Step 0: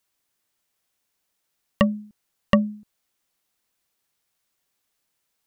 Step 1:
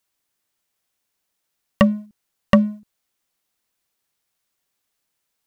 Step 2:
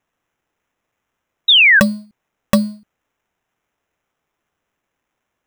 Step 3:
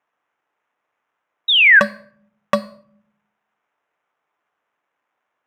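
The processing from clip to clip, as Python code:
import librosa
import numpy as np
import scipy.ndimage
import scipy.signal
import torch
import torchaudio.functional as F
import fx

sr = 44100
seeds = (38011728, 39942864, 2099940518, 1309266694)

y1 = fx.leveller(x, sr, passes=1)
y1 = F.gain(torch.from_numpy(y1), 1.5).numpy()
y2 = fx.sample_hold(y1, sr, seeds[0], rate_hz=4500.0, jitter_pct=0)
y2 = fx.spec_paint(y2, sr, seeds[1], shape='fall', start_s=1.48, length_s=0.32, low_hz=1500.0, high_hz=3900.0, level_db=-9.0)
y3 = fx.bandpass_q(y2, sr, hz=1100.0, q=0.83)
y3 = fx.room_shoebox(y3, sr, seeds[2], volume_m3=970.0, walls='furnished', distance_m=0.4)
y3 = F.gain(torch.from_numpy(y3), 3.0).numpy()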